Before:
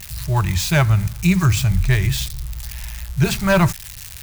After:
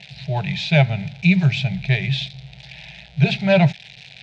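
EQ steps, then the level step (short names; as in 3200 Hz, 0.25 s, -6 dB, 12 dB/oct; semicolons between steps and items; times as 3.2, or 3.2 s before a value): speaker cabinet 130–4000 Hz, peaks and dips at 140 Hz +7 dB, 730 Hz +9 dB, 2400 Hz +8 dB, 3700 Hz +6 dB; fixed phaser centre 310 Hz, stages 6; 0.0 dB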